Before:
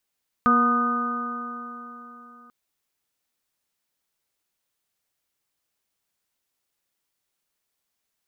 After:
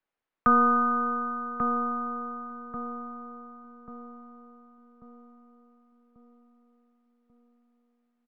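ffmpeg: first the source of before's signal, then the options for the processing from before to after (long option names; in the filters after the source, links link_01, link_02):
-f lavfi -i "aevalsrc='0.1*pow(10,-3*t/3.65)*sin(2*PI*238.34*t)+0.0335*pow(10,-3*t/3.65)*sin(2*PI*478.75*t)+0.0266*pow(10,-3*t/3.65)*sin(2*PI*723.26*t)+0.0168*pow(10,-3*t/3.65)*sin(2*PI*973.84*t)+0.168*pow(10,-3*t/3.65)*sin(2*PI*1232.38*t)+0.0398*pow(10,-3*t/3.65)*sin(2*PI*1500.69*t)':duration=2.04:sample_rate=44100"
-filter_complex "[0:a]lowpass=1900,asplit=2[link_01][link_02];[link_02]adelay=1139,lowpass=frequency=880:poles=1,volume=-3.5dB,asplit=2[link_03][link_04];[link_04]adelay=1139,lowpass=frequency=880:poles=1,volume=0.51,asplit=2[link_05][link_06];[link_06]adelay=1139,lowpass=frequency=880:poles=1,volume=0.51,asplit=2[link_07][link_08];[link_08]adelay=1139,lowpass=frequency=880:poles=1,volume=0.51,asplit=2[link_09][link_10];[link_10]adelay=1139,lowpass=frequency=880:poles=1,volume=0.51,asplit=2[link_11][link_12];[link_12]adelay=1139,lowpass=frequency=880:poles=1,volume=0.51,asplit=2[link_13][link_14];[link_14]adelay=1139,lowpass=frequency=880:poles=1,volume=0.51[link_15];[link_01][link_03][link_05][link_07][link_09][link_11][link_13][link_15]amix=inputs=8:normalize=0,acrossover=split=180|370|720[link_16][link_17][link_18][link_19];[link_16]aeval=exprs='abs(val(0))':channel_layout=same[link_20];[link_20][link_17][link_18][link_19]amix=inputs=4:normalize=0"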